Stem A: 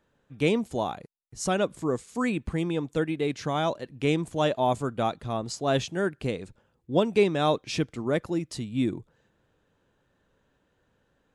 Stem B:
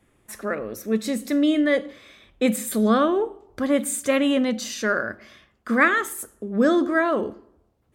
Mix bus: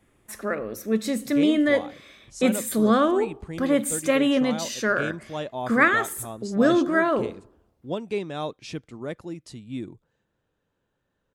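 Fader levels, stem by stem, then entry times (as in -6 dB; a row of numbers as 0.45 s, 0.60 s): -7.0 dB, -0.5 dB; 0.95 s, 0.00 s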